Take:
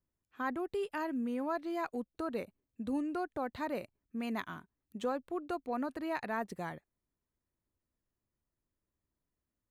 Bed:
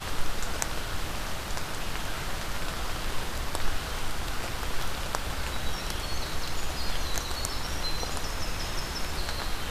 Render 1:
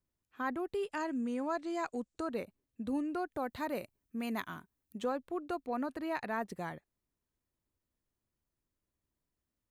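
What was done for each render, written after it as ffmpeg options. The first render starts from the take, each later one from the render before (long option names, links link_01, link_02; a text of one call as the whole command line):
ffmpeg -i in.wav -filter_complex "[0:a]asettb=1/sr,asplit=3[link_01][link_02][link_03];[link_01]atrim=end=0.894[link_04];[link_02]atrim=start=0.89:end=2.31,asetpts=PTS-STARTPTS,afade=type=in:duration=0.004:curve=qsin,afade=type=out:start_time=1.416:duration=0.004:curve=qsin,lowpass=frequency=7600:width_type=q:width=3.5[link_05];[link_03]atrim=start=2.306[link_06];[link_04][link_05]acrossfade=duration=0.004:curve1=hsin:curve2=qsin[link_07];[link_07][link_06]acrossfade=duration=0.004:curve1=qsin:curve2=hsin,asettb=1/sr,asplit=3[link_08][link_09][link_10];[link_08]atrim=end=3.324[link_11];[link_09]atrim=start=3.32:end=4.99,asetpts=PTS-STARTPTS,afade=type=in:duration=0.004:curve=qsin,afade=type=out:start_time=1.666:duration=0.004:curve=qsin,highshelf=frequency=7900:gain=9[link_12];[link_10]atrim=start=4.986[link_13];[link_11][link_12]acrossfade=duration=0.004:curve1=hsin:curve2=qsin[link_14];[link_14][link_13]acrossfade=duration=0.004:curve1=qsin:curve2=hsin" out.wav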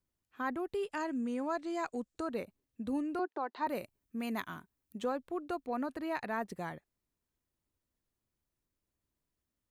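ffmpeg -i in.wav -filter_complex "[0:a]asettb=1/sr,asplit=3[link_01][link_02][link_03];[link_01]atrim=end=3.194[link_04];[link_02]atrim=start=3.19:end=3.67,asetpts=PTS-STARTPTS,afade=type=in:duration=0.004:curve=qsin,afade=type=out:start_time=0.476:duration=0.004:curve=qsin,highpass=frequency=320:width=0.5412,highpass=frequency=320:width=1.3066,equalizer=frequency=370:width_type=q:width=4:gain=6,equalizer=frequency=540:width_type=q:width=4:gain=-5,equalizer=frequency=960:width_type=q:width=4:gain=7,equalizer=frequency=2200:width_type=q:width=4:gain=-5,equalizer=frequency=3400:width_type=q:width=4:gain=-4,lowpass=frequency=5000:width=0.5412,lowpass=frequency=5000:width=1.3066[link_05];[link_03]atrim=start=3.666[link_06];[link_04][link_05]acrossfade=duration=0.004:curve1=hsin:curve2=qsin[link_07];[link_07][link_06]acrossfade=duration=0.004:curve1=qsin:curve2=hsin" out.wav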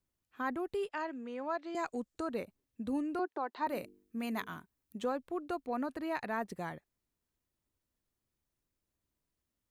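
ffmpeg -i in.wav -filter_complex "[0:a]asettb=1/sr,asplit=3[link_01][link_02][link_03];[link_01]atrim=end=0.894[link_04];[link_02]atrim=start=0.89:end=1.75,asetpts=PTS-STARTPTS,afade=type=in:duration=0.004:curve=qsin,afade=type=out:start_time=0.856:duration=0.004:curve=qsin,acrossover=split=330 5100:gain=0.158 1 0.0708[link_05][link_06][link_07];[link_05][link_06][link_07]amix=inputs=3:normalize=0[link_08];[link_03]atrim=start=1.746[link_09];[link_04][link_08]acrossfade=duration=0.004:curve1=hsin:curve2=qsin[link_10];[link_10][link_09]acrossfade=duration=0.004:curve1=qsin:curve2=hsin,asettb=1/sr,asplit=3[link_11][link_12][link_13];[link_11]atrim=end=3.654[link_14];[link_12]atrim=start=3.65:end=4.54,asetpts=PTS-STARTPTS,afade=type=in:duration=0.004:curve=qsin,afade=type=out:start_time=0.886:duration=0.004:curve=qsin,bandreject=frequency=50.35:width_type=h:width=4,bandreject=frequency=100.7:width_type=h:width=4,bandreject=frequency=151.05:width_type=h:width=4,bandreject=frequency=201.4:width_type=h:width=4,bandreject=frequency=251.75:width_type=h:width=4,bandreject=frequency=302.1:width_type=h:width=4,bandreject=frequency=352.45:width_type=h:width=4,bandreject=frequency=402.8:width_type=h:width=4,bandreject=frequency=453.15:width_type=h:width=4[link_15];[link_13]atrim=start=4.536[link_16];[link_14][link_15]acrossfade=duration=0.004:curve1=hsin:curve2=qsin[link_17];[link_17][link_16]acrossfade=duration=0.004:curve1=qsin:curve2=hsin" out.wav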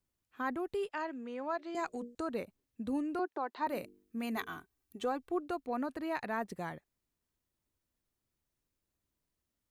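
ffmpeg -i in.wav -filter_complex "[0:a]asettb=1/sr,asplit=3[link_01][link_02][link_03];[link_01]atrim=end=1.514[link_04];[link_02]atrim=start=1.51:end=2.15,asetpts=PTS-STARTPTS,afade=type=in:duration=0.004:curve=qsin,afade=type=out:start_time=0.636:duration=0.004:curve=qsin,bandreject=frequency=60:width_type=h:width=6,bandreject=frequency=120:width_type=h:width=6,bandreject=frequency=180:width_type=h:width=6,bandreject=frequency=240:width_type=h:width=6,bandreject=frequency=300:width_type=h:width=6,bandreject=frequency=360:width_type=h:width=6,bandreject=frequency=420:width_type=h:width=6,bandreject=frequency=480:width_type=h:width=6,bandreject=frequency=540:width_type=h:width=6,bandreject=frequency=600:width_type=h:width=6[link_05];[link_03]atrim=start=2.146[link_06];[link_04][link_05]acrossfade=duration=0.004:curve1=hsin:curve2=qsin[link_07];[link_07][link_06]acrossfade=duration=0.004:curve1=qsin:curve2=hsin,asettb=1/sr,asplit=3[link_08][link_09][link_10];[link_08]atrim=end=4.364[link_11];[link_09]atrim=start=4.36:end=5.4,asetpts=PTS-STARTPTS,afade=type=in:duration=0.004:curve=qsin,afade=type=out:start_time=1.036:duration=0.004:curve=qsin,aecho=1:1:2.6:0.56,atrim=end_sample=45864[link_12];[link_10]atrim=start=5.396[link_13];[link_11][link_12]acrossfade=duration=0.004:curve1=hsin:curve2=qsin[link_14];[link_14][link_13]acrossfade=duration=0.004:curve1=qsin:curve2=hsin" out.wav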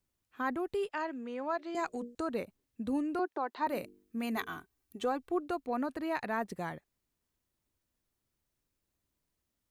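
ffmpeg -i in.wav -af "volume=2dB" out.wav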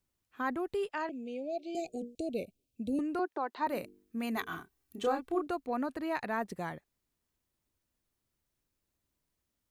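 ffmpeg -i in.wav -filter_complex "[0:a]asettb=1/sr,asplit=3[link_01][link_02][link_03];[link_01]atrim=end=1.094[link_04];[link_02]atrim=start=1.09:end=2.99,asetpts=PTS-STARTPTS,afade=type=in:duration=0.004:curve=qsin,afade=type=out:start_time=1.896:duration=0.004:curve=qsin,asuperstop=centerf=1300:order=20:qfactor=0.85[link_05];[link_03]atrim=start=2.986[link_06];[link_04][link_05]acrossfade=duration=0.004:curve1=hsin:curve2=qsin[link_07];[link_07][link_06]acrossfade=duration=0.004:curve1=qsin:curve2=hsin,asettb=1/sr,asplit=3[link_08][link_09][link_10];[link_08]atrim=end=4.484[link_11];[link_09]atrim=start=4.48:end=5.47,asetpts=PTS-STARTPTS,afade=type=in:duration=0.004:curve=qsin,afade=type=out:start_time=0.986:duration=0.004:curve=qsin,asplit=2[link_12][link_13];[link_13]adelay=30,volume=-4dB[link_14];[link_12][link_14]amix=inputs=2:normalize=0,atrim=end_sample=43659[link_15];[link_10]atrim=start=5.466[link_16];[link_11][link_15]acrossfade=duration=0.004:curve1=hsin:curve2=qsin[link_17];[link_17][link_16]acrossfade=duration=0.004:curve1=qsin:curve2=hsin" out.wav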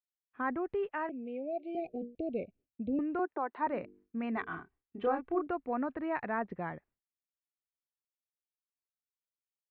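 ffmpeg -i in.wav -af "lowpass=frequency=2300:width=0.5412,lowpass=frequency=2300:width=1.3066,agate=range=-33dB:threshold=-59dB:ratio=3:detection=peak" out.wav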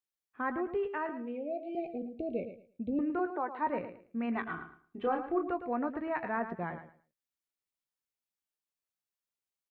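ffmpeg -i in.wav -filter_complex "[0:a]asplit=2[link_01][link_02];[link_02]adelay=17,volume=-12dB[link_03];[link_01][link_03]amix=inputs=2:normalize=0,asplit=2[link_04][link_05];[link_05]aecho=0:1:110|220|330:0.299|0.0657|0.0144[link_06];[link_04][link_06]amix=inputs=2:normalize=0" out.wav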